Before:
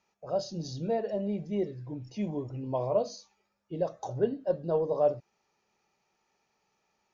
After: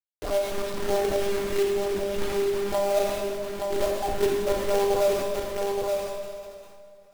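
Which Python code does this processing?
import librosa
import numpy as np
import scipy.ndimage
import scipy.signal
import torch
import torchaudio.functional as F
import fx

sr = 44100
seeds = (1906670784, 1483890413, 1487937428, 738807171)

p1 = np.where(x < 0.0, 10.0 ** (-3.0 / 20.0) * x, x)
p2 = fx.lpc_monotone(p1, sr, seeds[0], pitch_hz=200.0, order=10)
p3 = p2 + 0.52 * np.pad(p2, (int(2.8 * sr / 1000.0), 0))[:len(p2)]
p4 = fx.quant_companded(p3, sr, bits=4)
p5 = p4 + fx.echo_single(p4, sr, ms=873, db=-9.0, dry=0)
p6 = fx.rev_plate(p5, sr, seeds[1], rt60_s=1.3, hf_ratio=0.95, predelay_ms=0, drr_db=3.0)
y = fx.env_flatten(p6, sr, amount_pct=50)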